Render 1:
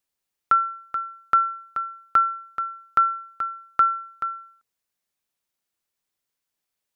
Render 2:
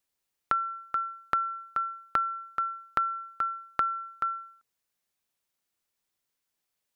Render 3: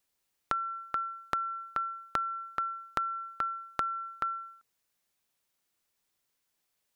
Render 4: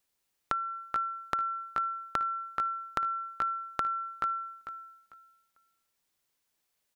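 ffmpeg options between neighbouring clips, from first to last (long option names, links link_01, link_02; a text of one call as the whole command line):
ffmpeg -i in.wav -af "acompressor=threshold=-25dB:ratio=5" out.wav
ffmpeg -i in.wav -af "acompressor=threshold=-37dB:ratio=2,volume=3dB" out.wav
ffmpeg -i in.wav -af "aecho=1:1:447|894|1341:0.282|0.062|0.0136" out.wav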